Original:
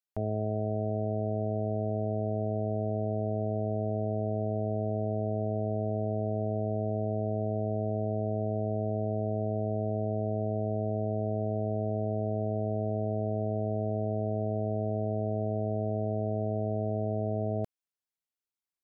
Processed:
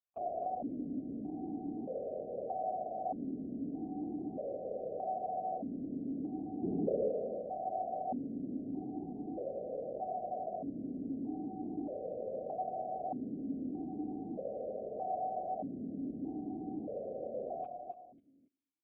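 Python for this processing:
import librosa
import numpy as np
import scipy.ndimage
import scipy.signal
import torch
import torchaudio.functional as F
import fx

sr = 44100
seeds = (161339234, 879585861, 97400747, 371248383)

y = fx.low_shelf_res(x, sr, hz=610.0, db=8.5, q=1.5, at=(6.62, 7.08), fade=0.02)
y = fx.echo_feedback(y, sr, ms=275, feedback_pct=28, wet_db=-7.5)
y = fx.rev_double_slope(y, sr, seeds[0], early_s=0.5, late_s=2.0, knee_db=-26, drr_db=15.5)
y = fx.lpc_vocoder(y, sr, seeds[1], excitation='whisper', order=16)
y = fx.vowel_held(y, sr, hz=1.6)
y = y * librosa.db_to_amplitude(3.0)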